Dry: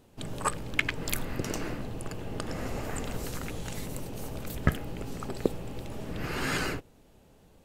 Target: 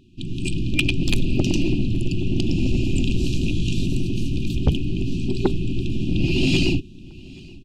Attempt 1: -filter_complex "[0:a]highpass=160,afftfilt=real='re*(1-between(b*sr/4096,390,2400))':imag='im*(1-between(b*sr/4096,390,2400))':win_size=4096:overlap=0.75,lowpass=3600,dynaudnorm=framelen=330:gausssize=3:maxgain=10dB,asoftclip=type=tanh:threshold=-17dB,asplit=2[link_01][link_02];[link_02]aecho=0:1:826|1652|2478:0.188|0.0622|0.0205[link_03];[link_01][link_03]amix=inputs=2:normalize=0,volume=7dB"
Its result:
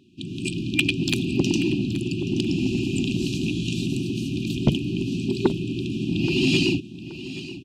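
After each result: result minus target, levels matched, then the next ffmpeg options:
echo-to-direct +10 dB; 125 Hz band −3.0 dB
-filter_complex "[0:a]highpass=160,afftfilt=real='re*(1-between(b*sr/4096,390,2400))':imag='im*(1-between(b*sr/4096,390,2400))':win_size=4096:overlap=0.75,lowpass=3600,dynaudnorm=framelen=330:gausssize=3:maxgain=10dB,asoftclip=type=tanh:threshold=-17dB,asplit=2[link_01][link_02];[link_02]aecho=0:1:826|1652:0.0596|0.0197[link_03];[link_01][link_03]amix=inputs=2:normalize=0,volume=7dB"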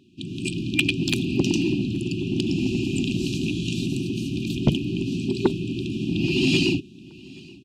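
125 Hz band −3.5 dB
-filter_complex "[0:a]afftfilt=real='re*(1-between(b*sr/4096,390,2400))':imag='im*(1-between(b*sr/4096,390,2400))':win_size=4096:overlap=0.75,lowpass=3600,dynaudnorm=framelen=330:gausssize=3:maxgain=10dB,asoftclip=type=tanh:threshold=-17dB,asplit=2[link_01][link_02];[link_02]aecho=0:1:826|1652:0.0596|0.0197[link_03];[link_01][link_03]amix=inputs=2:normalize=0,volume=7dB"

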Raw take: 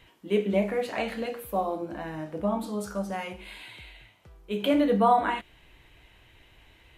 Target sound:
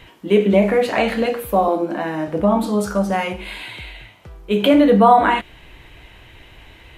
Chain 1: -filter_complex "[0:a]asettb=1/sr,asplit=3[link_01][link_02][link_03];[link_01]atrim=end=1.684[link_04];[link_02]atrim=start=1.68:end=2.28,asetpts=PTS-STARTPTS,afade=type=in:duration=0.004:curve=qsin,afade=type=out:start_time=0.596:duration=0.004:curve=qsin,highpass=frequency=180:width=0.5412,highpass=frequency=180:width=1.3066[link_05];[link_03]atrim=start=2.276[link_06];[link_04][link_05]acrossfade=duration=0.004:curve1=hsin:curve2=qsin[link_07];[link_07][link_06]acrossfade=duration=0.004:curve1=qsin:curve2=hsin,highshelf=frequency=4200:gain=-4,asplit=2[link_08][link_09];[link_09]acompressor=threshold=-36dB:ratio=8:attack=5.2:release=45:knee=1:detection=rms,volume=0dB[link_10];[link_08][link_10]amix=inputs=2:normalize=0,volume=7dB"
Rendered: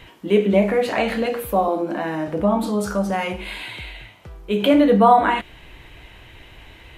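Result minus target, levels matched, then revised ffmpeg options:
downward compressor: peak gain reduction +9 dB
-filter_complex "[0:a]asettb=1/sr,asplit=3[link_01][link_02][link_03];[link_01]atrim=end=1.684[link_04];[link_02]atrim=start=1.68:end=2.28,asetpts=PTS-STARTPTS,afade=type=in:duration=0.004:curve=qsin,afade=type=out:start_time=0.596:duration=0.004:curve=qsin,highpass=frequency=180:width=0.5412,highpass=frequency=180:width=1.3066[link_05];[link_03]atrim=start=2.276[link_06];[link_04][link_05]acrossfade=duration=0.004:curve1=hsin:curve2=qsin[link_07];[link_07][link_06]acrossfade=duration=0.004:curve1=qsin:curve2=hsin,highshelf=frequency=4200:gain=-4,asplit=2[link_08][link_09];[link_09]acompressor=threshold=-26dB:ratio=8:attack=5.2:release=45:knee=1:detection=rms,volume=0dB[link_10];[link_08][link_10]amix=inputs=2:normalize=0,volume=7dB"

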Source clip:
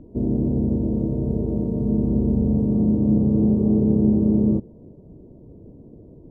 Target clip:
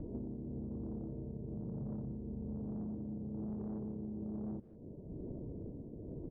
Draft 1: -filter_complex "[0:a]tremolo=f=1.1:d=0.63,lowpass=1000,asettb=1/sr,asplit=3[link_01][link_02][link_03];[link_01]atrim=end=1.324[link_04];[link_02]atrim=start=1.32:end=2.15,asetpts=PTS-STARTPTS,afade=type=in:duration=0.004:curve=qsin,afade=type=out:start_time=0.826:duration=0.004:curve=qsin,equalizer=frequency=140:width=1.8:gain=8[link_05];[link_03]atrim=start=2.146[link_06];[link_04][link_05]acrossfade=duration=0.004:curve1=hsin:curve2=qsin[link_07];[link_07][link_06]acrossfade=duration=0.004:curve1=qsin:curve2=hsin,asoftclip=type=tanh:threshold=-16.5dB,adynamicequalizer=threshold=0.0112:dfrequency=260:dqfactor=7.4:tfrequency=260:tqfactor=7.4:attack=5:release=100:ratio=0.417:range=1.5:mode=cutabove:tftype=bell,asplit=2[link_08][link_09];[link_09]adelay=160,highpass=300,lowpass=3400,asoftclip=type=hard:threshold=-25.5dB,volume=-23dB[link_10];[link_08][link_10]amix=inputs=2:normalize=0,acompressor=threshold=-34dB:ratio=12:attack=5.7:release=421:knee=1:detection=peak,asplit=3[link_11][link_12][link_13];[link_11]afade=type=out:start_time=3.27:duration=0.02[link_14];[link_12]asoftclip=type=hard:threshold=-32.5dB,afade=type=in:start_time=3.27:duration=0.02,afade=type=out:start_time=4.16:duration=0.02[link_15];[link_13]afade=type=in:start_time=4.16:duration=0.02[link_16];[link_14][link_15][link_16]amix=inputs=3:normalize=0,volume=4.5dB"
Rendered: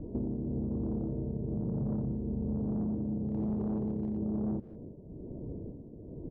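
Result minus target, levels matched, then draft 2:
downward compressor: peak gain reduction −8.5 dB
-filter_complex "[0:a]tremolo=f=1.1:d=0.63,lowpass=1000,asettb=1/sr,asplit=3[link_01][link_02][link_03];[link_01]atrim=end=1.324[link_04];[link_02]atrim=start=1.32:end=2.15,asetpts=PTS-STARTPTS,afade=type=in:duration=0.004:curve=qsin,afade=type=out:start_time=0.826:duration=0.004:curve=qsin,equalizer=frequency=140:width=1.8:gain=8[link_05];[link_03]atrim=start=2.146[link_06];[link_04][link_05]acrossfade=duration=0.004:curve1=hsin:curve2=qsin[link_07];[link_07][link_06]acrossfade=duration=0.004:curve1=qsin:curve2=hsin,asoftclip=type=tanh:threshold=-16.5dB,adynamicequalizer=threshold=0.0112:dfrequency=260:dqfactor=7.4:tfrequency=260:tqfactor=7.4:attack=5:release=100:ratio=0.417:range=1.5:mode=cutabove:tftype=bell,asplit=2[link_08][link_09];[link_09]adelay=160,highpass=300,lowpass=3400,asoftclip=type=hard:threshold=-25.5dB,volume=-23dB[link_10];[link_08][link_10]amix=inputs=2:normalize=0,acompressor=threshold=-43.5dB:ratio=12:attack=5.7:release=421:knee=1:detection=peak,asplit=3[link_11][link_12][link_13];[link_11]afade=type=out:start_time=3.27:duration=0.02[link_14];[link_12]asoftclip=type=hard:threshold=-32.5dB,afade=type=in:start_time=3.27:duration=0.02,afade=type=out:start_time=4.16:duration=0.02[link_15];[link_13]afade=type=in:start_time=4.16:duration=0.02[link_16];[link_14][link_15][link_16]amix=inputs=3:normalize=0,volume=4.5dB"

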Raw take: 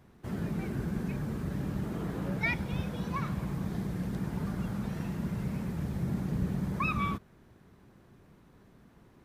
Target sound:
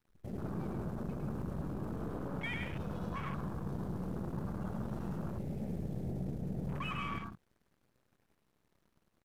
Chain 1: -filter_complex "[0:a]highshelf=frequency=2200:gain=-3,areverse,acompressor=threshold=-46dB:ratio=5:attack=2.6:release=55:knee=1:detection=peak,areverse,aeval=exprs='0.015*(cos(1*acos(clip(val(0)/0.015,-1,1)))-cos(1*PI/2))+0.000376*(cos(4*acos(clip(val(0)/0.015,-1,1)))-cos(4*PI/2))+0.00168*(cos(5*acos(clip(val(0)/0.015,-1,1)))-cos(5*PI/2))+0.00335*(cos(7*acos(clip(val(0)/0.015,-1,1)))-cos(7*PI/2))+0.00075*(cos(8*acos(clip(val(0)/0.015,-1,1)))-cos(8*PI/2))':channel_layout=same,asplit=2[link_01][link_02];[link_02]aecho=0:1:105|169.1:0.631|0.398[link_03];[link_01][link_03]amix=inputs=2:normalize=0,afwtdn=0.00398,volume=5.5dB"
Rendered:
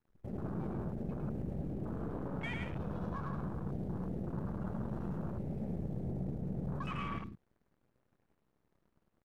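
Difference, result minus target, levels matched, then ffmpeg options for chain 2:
4,000 Hz band −4.5 dB
-filter_complex "[0:a]highshelf=frequency=2200:gain=8.5,areverse,acompressor=threshold=-46dB:ratio=5:attack=2.6:release=55:knee=1:detection=peak,areverse,aeval=exprs='0.015*(cos(1*acos(clip(val(0)/0.015,-1,1)))-cos(1*PI/2))+0.000376*(cos(4*acos(clip(val(0)/0.015,-1,1)))-cos(4*PI/2))+0.00168*(cos(5*acos(clip(val(0)/0.015,-1,1)))-cos(5*PI/2))+0.00335*(cos(7*acos(clip(val(0)/0.015,-1,1)))-cos(7*PI/2))+0.00075*(cos(8*acos(clip(val(0)/0.015,-1,1)))-cos(8*PI/2))':channel_layout=same,asplit=2[link_01][link_02];[link_02]aecho=0:1:105|169.1:0.631|0.398[link_03];[link_01][link_03]amix=inputs=2:normalize=0,afwtdn=0.00398,volume=5.5dB"

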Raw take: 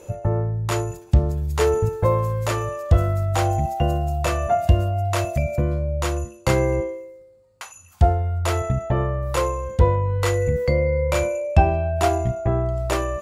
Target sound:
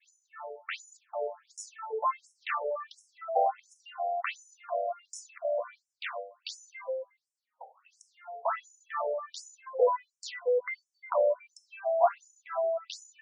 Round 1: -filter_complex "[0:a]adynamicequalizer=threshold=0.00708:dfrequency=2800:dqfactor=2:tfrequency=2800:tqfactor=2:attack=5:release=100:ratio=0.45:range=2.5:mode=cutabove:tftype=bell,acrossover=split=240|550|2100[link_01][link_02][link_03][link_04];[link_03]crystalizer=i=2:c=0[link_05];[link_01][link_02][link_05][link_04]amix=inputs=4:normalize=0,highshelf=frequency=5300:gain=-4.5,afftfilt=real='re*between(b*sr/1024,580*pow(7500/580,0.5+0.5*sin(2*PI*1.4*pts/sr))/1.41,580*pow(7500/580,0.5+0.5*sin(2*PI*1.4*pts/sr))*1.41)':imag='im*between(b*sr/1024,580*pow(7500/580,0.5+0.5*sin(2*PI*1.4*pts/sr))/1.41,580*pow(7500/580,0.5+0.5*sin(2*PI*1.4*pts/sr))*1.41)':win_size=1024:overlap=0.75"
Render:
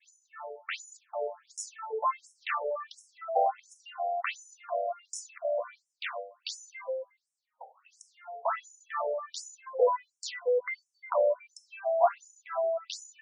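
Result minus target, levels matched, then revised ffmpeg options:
8,000 Hz band +4.5 dB
-filter_complex "[0:a]adynamicequalizer=threshold=0.00708:dfrequency=2800:dqfactor=2:tfrequency=2800:tqfactor=2:attack=5:release=100:ratio=0.45:range=2.5:mode=cutabove:tftype=bell,acrossover=split=240|550|2100[link_01][link_02][link_03][link_04];[link_03]crystalizer=i=2:c=0[link_05];[link_01][link_02][link_05][link_04]amix=inputs=4:normalize=0,highshelf=frequency=5300:gain=-11.5,afftfilt=real='re*between(b*sr/1024,580*pow(7500/580,0.5+0.5*sin(2*PI*1.4*pts/sr))/1.41,580*pow(7500/580,0.5+0.5*sin(2*PI*1.4*pts/sr))*1.41)':imag='im*between(b*sr/1024,580*pow(7500/580,0.5+0.5*sin(2*PI*1.4*pts/sr))/1.41,580*pow(7500/580,0.5+0.5*sin(2*PI*1.4*pts/sr))*1.41)':win_size=1024:overlap=0.75"

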